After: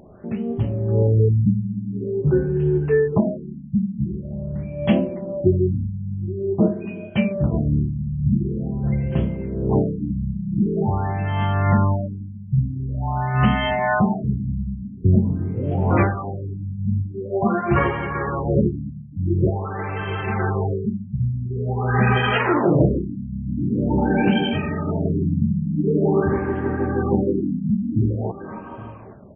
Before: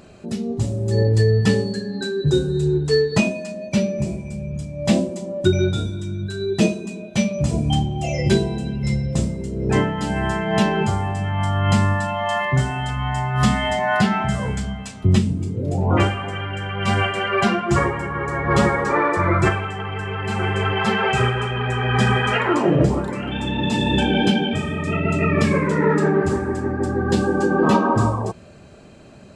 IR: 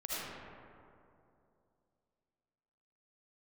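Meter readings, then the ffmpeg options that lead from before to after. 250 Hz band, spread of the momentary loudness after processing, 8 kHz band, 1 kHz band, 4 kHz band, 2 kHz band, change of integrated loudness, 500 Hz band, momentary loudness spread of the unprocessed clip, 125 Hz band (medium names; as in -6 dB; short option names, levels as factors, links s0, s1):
-0.5 dB, 10 LU, under -40 dB, -4.0 dB, -9.0 dB, -5.5 dB, -1.5 dB, -2.0 dB, 8 LU, 0.0 dB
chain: -filter_complex "[0:a]asplit=2[s0][s1];[s1]aecho=0:1:818:0.119[s2];[s0][s2]amix=inputs=2:normalize=0,afftfilt=real='re*lt(b*sr/1024,240*pow(3400/240,0.5+0.5*sin(2*PI*0.46*pts/sr)))':imag='im*lt(b*sr/1024,240*pow(3400/240,0.5+0.5*sin(2*PI*0.46*pts/sr)))':win_size=1024:overlap=0.75"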